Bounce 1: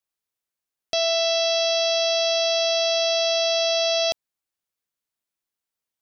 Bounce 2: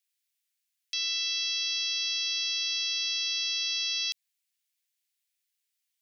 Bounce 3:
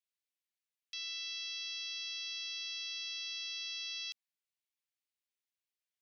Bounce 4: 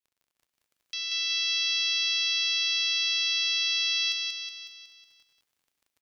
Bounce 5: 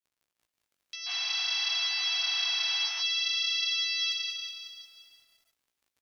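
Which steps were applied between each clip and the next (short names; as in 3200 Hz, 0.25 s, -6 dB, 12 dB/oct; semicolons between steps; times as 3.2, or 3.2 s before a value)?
limiter -24.5 dBFS, peak gain reduction 10.5 dB; inverse Chebyshev high-pass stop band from 570 Hz, stop band 60 dB; gain +5.5 dB
high shelf 4800 Hz -9.5 dB; gain -7.5 dB
AGC gain up to 8.5 dB; crackle 25/s -52 dBFS; on a send: feedback echo 0.184 s, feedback 54%, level -4 dB
painted sound noise, 1.06–3.01, 650–4800 Hz -40 dBFS; chorus 0.51 Hz, delay 15.5 ms, depth 5.5 ms; lo-fi delay 0.346 s, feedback 35%, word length 9-bit, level -14 dB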